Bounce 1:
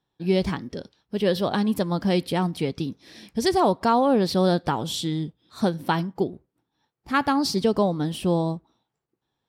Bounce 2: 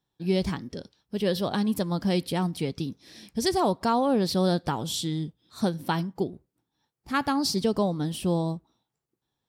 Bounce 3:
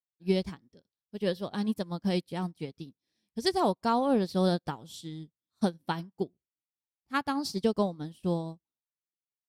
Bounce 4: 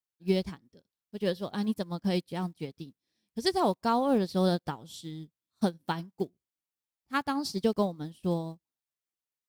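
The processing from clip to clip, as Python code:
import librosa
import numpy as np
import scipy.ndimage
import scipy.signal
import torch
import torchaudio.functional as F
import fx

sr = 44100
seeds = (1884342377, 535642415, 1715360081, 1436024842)

y1 = fx.bass_treble(x, sr, bass_db=3, treble_db=6)
y1 = F.gain(torch.from_numpy(y1), -4.5).numpy()
y2 = fx.upward_expand(y1, sr, threshold_db=-42.0, expansion=2.5)
y3 = fx.block_float(y2, sr, bits=7)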